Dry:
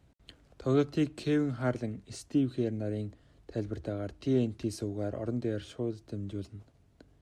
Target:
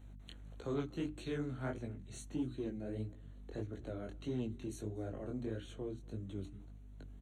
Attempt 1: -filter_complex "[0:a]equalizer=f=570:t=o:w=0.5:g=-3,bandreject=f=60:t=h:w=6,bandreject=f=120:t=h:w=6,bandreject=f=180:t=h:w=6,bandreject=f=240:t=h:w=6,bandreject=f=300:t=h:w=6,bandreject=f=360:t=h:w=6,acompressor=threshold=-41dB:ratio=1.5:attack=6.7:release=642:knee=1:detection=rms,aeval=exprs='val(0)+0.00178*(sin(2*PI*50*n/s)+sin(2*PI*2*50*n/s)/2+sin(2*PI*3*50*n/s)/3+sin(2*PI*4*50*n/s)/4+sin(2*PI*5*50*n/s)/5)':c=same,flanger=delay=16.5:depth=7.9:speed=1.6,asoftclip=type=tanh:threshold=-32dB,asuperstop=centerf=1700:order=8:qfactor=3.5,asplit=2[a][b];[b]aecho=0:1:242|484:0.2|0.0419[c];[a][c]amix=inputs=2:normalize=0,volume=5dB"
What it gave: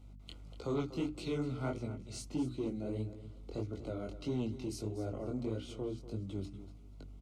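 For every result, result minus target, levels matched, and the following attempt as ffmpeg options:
echo-to-direct +11.5 dB; compressor: peak gain reduction -4 dB; 2000 Hz band -3.5 dB
-filter_complex "[0:a]equalizer=f=570:t=o:w=0.5:g=-3,bandreject=f=60:t=h:w=6,bandreject=f=120:t=h:w=6,bandreject=f=180:t=h:w=6,bandreject=f=240:t=h:w=6,bandreject=f=300:t=h:w=6,bandreject=f=360:t=h:w=6,acompressor=threshold=-41dB:ratio=1.5:attack=6.7:release=642:knee=1:detection=rms,aeval=exprs='val(0)+0.00178*(sin(2*PI*50*n/s)+sin(2*PI*2*50*n/s)/2+sin(2*PI*3*50*n/s)/3+sin(2*PI*4*50*n/s)/4+sin(2*PI*5*50*n/s)/5)':c=same,flanger=delay=16.5:depth=7.9:speed=1.6,asoftclip=type=tanh:threshold=-32dB,asuperstop=centerf=1700:order=8:qfactor=3.5,asplit=2[a][b];[b]aecho=0:1:242|484:0.0531|0.0111[c];[a][c]amix=inputs=2:normalize=0,volume=5dB"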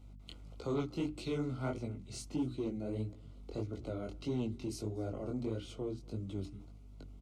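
compressor: peak gain reduction -4 dB; 2000 Hz band -3.5 dB
-filter_complex "[0:a]equalizer=f=570:t=o:w=0.5:g=-3,bandreject=f=60:t=h:w=6,bandreject=f=120:t=h:w=6,bandreject=f=180:t=h:w=6,bandreject=f=240:t=h:w=6,bandreject=f=300:t=h:w=6,bandreject=f=360:t=h:w=6,acompressor=threshold=-52.5dB:ratio=1.5:attack=6.7:release=642:knee=1:detection=rms,aeval=exprs='val(0)+0.00178*(sin(2*PI*50*n/s)+sin(2*PI*2*50*n/s)/2+sin(2*PI*3*50*n/s)/3+sin(2*PI*4*50*n/s)/4+sin(2*PI*5*50*n/s)/5)':c=same,flanger=delay=16.5:depth=7.9:speed=1.6,asoftclip=type=tanh:threshold=-32dB,asuperstop=centerf=1700:order=8:qfactor=3.5,asplit=2[a][b];[b]aecho=0:1:242|484:0.0531|0.0111[c];[a][c]amix=inputs=2:normalize=0,volume=5dB"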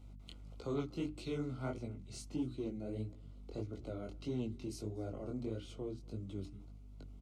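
2000 Hz band -3.5 dB
-filter_complex "[0:a]equalizer=f=570:t=o:w=0.5:g=-3,bandreject=f=60:t=h:w=6,bandreject=f=120:t=h:w=6,bandreject=f=180:t=h:w=6,bandreject=f=240:t=h:w=6,bandreject=f=300:t=h:w=6,bandreject=f=360:t=h:w=6,acompressor=threshold=-52.5dB:ratio=1.5:attack=6.7:release=642:knee=1:detection=rms,aeval=exprs='val(0)+0.00178*(sin(2*PI*50*n/s)+sin(2*PI*2*50*n/s)/2+sin(2*PI*3*50*n/s)/3+sin(2*PI*4*50*n/s)/4+sin(2*PI*5*50*n/s)/5)':c=same,flanger=delay=16.5:depth=7.9:speed=1.6,asoftclip=type=tanh:threshold=-32dB,asuperstop=centerf=5000:order=8:qfactor=3.5,asplit=2[a][b];[b]aecho=0:1:242|484:0.0531|0.0111[c];[a][c]amix=inputs=2:normalize=0,volume=5dB"

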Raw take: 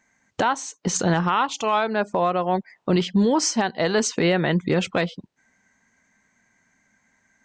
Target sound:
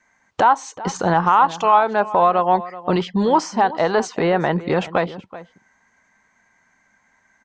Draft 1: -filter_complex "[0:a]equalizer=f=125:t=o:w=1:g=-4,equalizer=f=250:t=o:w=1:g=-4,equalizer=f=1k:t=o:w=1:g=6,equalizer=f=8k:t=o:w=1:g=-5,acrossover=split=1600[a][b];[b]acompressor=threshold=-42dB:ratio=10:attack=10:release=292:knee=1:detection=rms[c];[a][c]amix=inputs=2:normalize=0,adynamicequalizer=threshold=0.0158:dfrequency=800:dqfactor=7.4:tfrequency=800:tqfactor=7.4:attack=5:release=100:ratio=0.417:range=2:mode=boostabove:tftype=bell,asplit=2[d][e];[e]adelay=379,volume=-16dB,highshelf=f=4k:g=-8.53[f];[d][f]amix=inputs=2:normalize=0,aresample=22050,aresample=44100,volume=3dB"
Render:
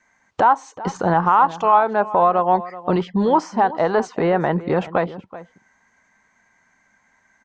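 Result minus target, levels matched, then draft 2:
compressor: peak gain reduction +8.5 dB
-filter_complex "[0:a]equalizer=f=125:t=o:w=1:g=-4,equalizer=f=250:t=o:w=1:g=-4,equalizer=f=1k:t=o:w=1:g=6,equalizer=f=8k:t=o:w=1:g=-5,acrossover=split=1600[a][b];[b]acompressor=threshold=-32.5dB:ratio=10:attack=10:release=292:knee=1:detection=rms[c];[a][c]amix=inputs=2:normalize=0,adynamicequalizer=threshold=0.0158:dfrequency=800:dqfactor=7.4:tfrequency=800:tqfactor=7.4:attack=5:release=100:ratio=0.417:range=2:mode=boostabove:tftype=bell,asplit=2[d][e];[e]adelay=379,volume=-16dB,highshelf=f=4k:g=-8.53[f];[d][f]amix=inputs=2:normalize=0,aresample=22050,aresample=44100,volume=3dB"

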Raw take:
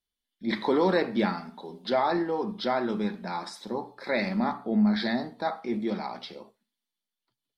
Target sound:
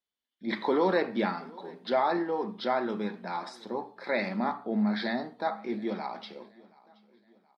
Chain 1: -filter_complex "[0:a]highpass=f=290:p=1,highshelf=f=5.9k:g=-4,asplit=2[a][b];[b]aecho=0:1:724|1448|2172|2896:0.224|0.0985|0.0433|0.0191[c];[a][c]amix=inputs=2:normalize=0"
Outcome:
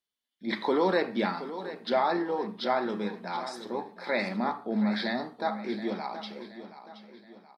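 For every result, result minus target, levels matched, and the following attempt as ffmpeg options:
echo-to-direct +11 dB; 8000 Hz band +5.5 dB
-filter_complex "[0:a]highpass=f=290:p=1,highshelf=f=5.9k:g=-4,asplit=2[a][b];[b]aecho=0:1:724|1448|2172:0.0631|0.0278|0.0122[c];[a][c]amix=inputs=2:normalize=0"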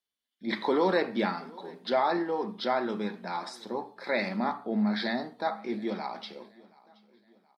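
8000 Hz band +5.5 dB
-filter_complex "[0:a]highpass=f=290:p=1,highshelf=f=5.9k:g=-13.5,asplit=2[a][b];[b]aecho=0:1:724|1448|2172:0.0631|0.0278|0.0122[c];[a][c]amix=inputs=2:normalize=0"

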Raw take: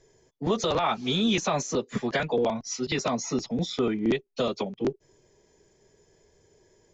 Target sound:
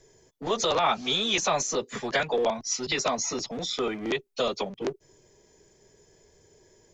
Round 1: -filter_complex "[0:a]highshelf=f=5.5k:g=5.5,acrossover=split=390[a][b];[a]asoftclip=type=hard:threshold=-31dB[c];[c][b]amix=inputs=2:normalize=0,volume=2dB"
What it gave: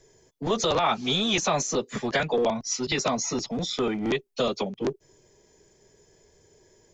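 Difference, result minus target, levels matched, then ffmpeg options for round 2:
hard clip: distortion -5 dB
-filter_complex "[0:a]highshelf=f=5.5k:g=5.5,acrossover=split=390[a][b];[a]asoftclip=type=hard:threshold=-41dB[c];[c][b]amix=inputs=2:normalize=0,volume=2dB"

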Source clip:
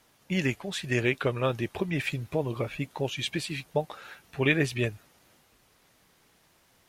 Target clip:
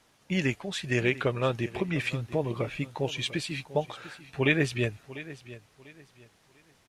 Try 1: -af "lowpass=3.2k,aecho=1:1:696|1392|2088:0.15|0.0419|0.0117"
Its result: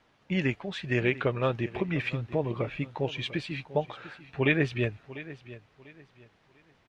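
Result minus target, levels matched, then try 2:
8000 Hz band -13.0 dB
-af "lowpass=10k,aecho=1:1:696|1392|2088:0.15|0.0419|0.0117"

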